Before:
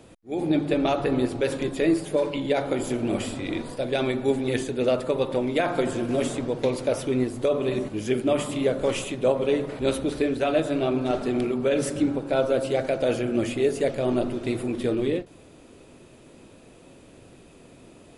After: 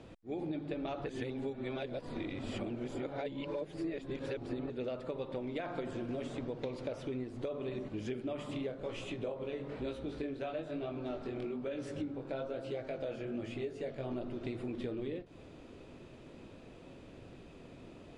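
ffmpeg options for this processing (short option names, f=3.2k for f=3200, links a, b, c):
-filter_complex "[0:a]asplit=3[a][b][c];[a]afade=t=out:st=8.71:d=0.02[d];[b]flanger=delay=17:depth=5.7:speed=1.1,afade=t=in:st=8.71:d=0.02,afade=t=out:st=14.1:d=0.02[e];[c]afade=t=in:st=14.1:d=0.02[f];[d][e][f]amix=inputs=3:normalize=0,asplit=3[g][h][i];[g]atrim=end=1.082[j];[h]atrim=start=1.078:end=4.702,asetpts=PTS-STARTPTS,areverse[k];[i]atrim=start=4.698[l];[j][k]acrossfade=d=0.004:c1=hsin:c2=hsin[m];[m][l]acrossfade=d=0.004:c1=hsin:c2=hsin,lowpass=4.6k,lowshelf=f=140:g=3.5,acompressor=threshold=-33dB:ratio=6,volume=-3.5dB"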